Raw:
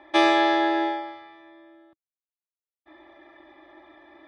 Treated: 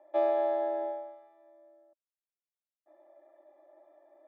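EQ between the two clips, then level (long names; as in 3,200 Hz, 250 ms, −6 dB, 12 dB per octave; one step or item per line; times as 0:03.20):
resonant band-pass 600 Hz, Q 6.4
0.0 dB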